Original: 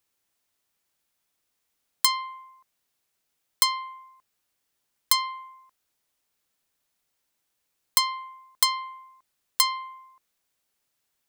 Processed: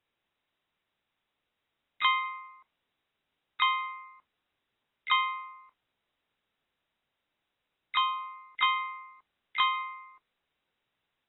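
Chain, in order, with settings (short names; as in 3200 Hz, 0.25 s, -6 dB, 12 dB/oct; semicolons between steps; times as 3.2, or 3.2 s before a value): harmoniser +3 st -8 dB, +12 st -8 dB; AAC 16 kbps 22050 Hz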